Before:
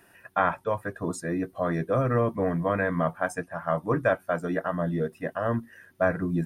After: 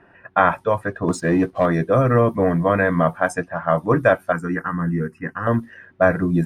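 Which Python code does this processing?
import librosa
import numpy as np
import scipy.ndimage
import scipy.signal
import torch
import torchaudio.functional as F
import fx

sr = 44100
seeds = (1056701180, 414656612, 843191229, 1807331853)

y = fx.env_lowpass(x, sr, base_hz=1600.0, full_db=-22.0)
y = fx.leveller(y, sr, passes=1, at=(1.08, 1.66))
y = fx.fixed_phaser(y, sr, hz=1500.0, stages=4, at=(4.32, 5.47))
y = F.gain(torch.from_numpy(y), 8.0).numpy()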